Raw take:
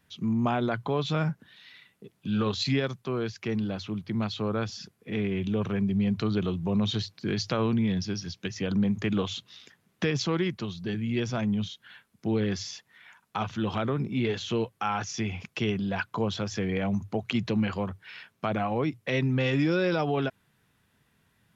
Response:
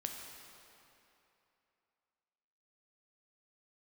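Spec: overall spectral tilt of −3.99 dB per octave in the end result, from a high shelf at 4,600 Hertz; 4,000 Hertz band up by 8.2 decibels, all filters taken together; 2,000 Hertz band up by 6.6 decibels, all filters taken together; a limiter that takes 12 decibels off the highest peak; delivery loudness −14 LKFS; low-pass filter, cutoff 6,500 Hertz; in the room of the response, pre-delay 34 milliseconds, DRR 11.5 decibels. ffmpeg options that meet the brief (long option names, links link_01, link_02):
-filter_complex "[0:a]lowpass=6500,equalizer=frequency=2000:width_type=o:gain=5.5,equalizer=frequency=4000:width_type=o:gain=4.5,highshelf=frequency=4600:gain=9,alimiter=limit=-18dB:level=0:latency=1,asplit=2[link_01][link_02];[1:a]atrim=start_sample=2205,adelay=34[link_03];[link_02][link_03]afir=irnorm=-1:irlink=0,volume=-11dB[link_04];[link_01][link_04]amix=inputs=2:normalize=0,volume=14.5dB"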